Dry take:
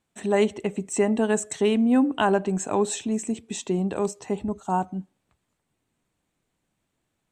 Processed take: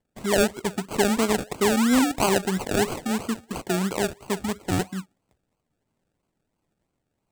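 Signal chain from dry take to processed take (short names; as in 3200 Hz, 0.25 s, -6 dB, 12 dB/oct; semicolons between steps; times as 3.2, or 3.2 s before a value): decimation with a swept rate 34×, swing 60% 3 Hz; bell 8000 Hz +7.5 dB 0.37 oct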